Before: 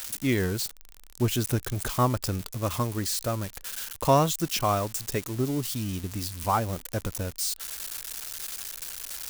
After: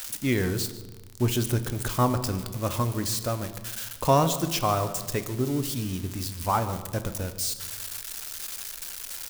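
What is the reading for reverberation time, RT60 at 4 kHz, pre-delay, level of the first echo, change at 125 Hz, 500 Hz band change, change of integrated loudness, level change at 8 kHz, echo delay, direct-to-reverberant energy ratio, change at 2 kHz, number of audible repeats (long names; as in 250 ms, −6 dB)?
1.3 s, 0.95 s, 6 ms, −17.5 dB, +1.0 dB, +0.5 dB, +0.5 dB, 0.0 dB, 146 ms, 9.0 dB, +0.5 dB, 1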